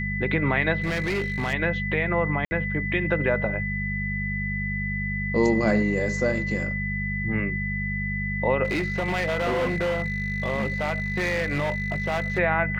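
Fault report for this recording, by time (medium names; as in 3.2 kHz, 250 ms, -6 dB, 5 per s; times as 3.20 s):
hum 50 Hz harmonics 4 -30 dBFS
whine 2 kHz -29 dBFS
0.82–1.54 s: clipped -22.5 dBFS
2.45–2.51 s: dropout 60 ms
8.64–12.39 s: clipped -21.5 dBFS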